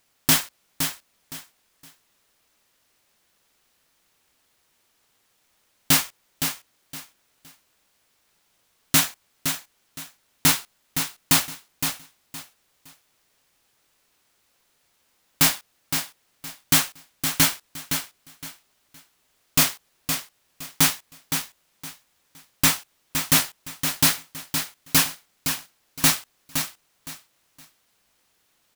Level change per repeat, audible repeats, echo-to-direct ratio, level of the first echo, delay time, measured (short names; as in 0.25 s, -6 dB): -12.0 dB, 3, -7.0 dB, -7.5 dB, 0.515 s